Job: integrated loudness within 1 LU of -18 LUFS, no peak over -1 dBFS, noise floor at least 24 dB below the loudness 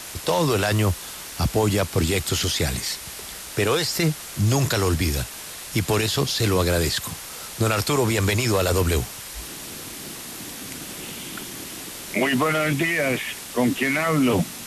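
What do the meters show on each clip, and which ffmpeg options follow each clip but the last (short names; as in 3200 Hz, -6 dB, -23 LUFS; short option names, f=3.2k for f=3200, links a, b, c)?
noise floor -37 dBFS; noise floor target -48 dBFS; loudness -23.5 LUFS; peak -8.5 dBFS; loudness target -18.0 LUFS
-> -af "afftdn=nr=11:nf=-37"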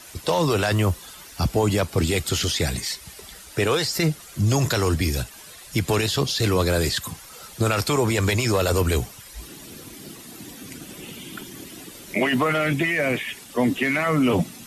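noise floor -44 dBFS; noise floor target -47 dBFS
-> -af "afftdn=nr=6:nf=-44"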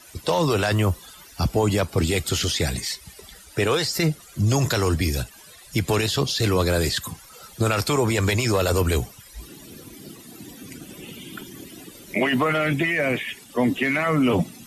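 noise floor -47 dBFS; loudness -22.5 LUFS; peak -9.0 dBFS; loudness target -18.0 LUFS
-> -af "volume=4.5dB"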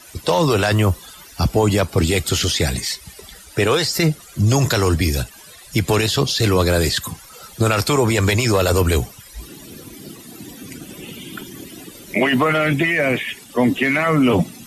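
loudness -18.0 LUFS; peak -4.5 dBFS; noise floor -43 dBFS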